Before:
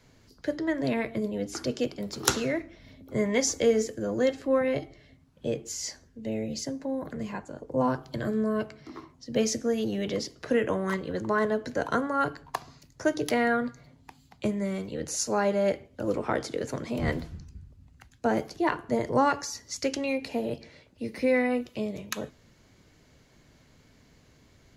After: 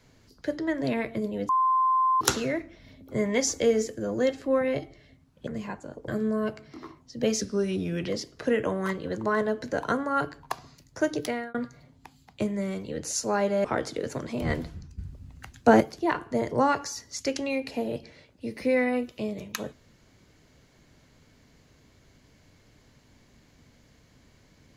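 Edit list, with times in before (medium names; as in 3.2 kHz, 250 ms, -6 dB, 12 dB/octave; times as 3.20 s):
1.49–2.21 s: bleep 1.04 kHz -19.5 dBFS
5.47–7.12 s: delete
7.73–8.21 s: delete
9.54–10.12 s: speed 86%
13.19–13.58 s: fade out
15.68–16.22 s: delete
17.56–18.38 s: gain +8.5 dB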